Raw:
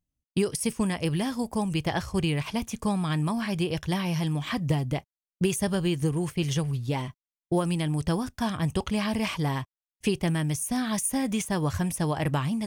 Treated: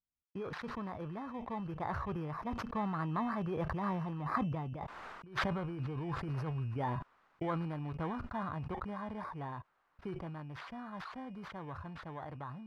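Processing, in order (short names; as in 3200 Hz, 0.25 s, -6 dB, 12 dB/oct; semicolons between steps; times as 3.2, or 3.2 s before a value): FFT order left unsorted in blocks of 16 samples; Doppler pass-by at 5.06, 12 m/s, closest 1.8 m; synth low-pass 1200 Hz, resonance Q 2; negative-ratio compressor -47 dBFS, ratio -1; tilt shelf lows -4.5 dB, about 770 Hz; sustainer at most 28 dB/s; gain +11 dB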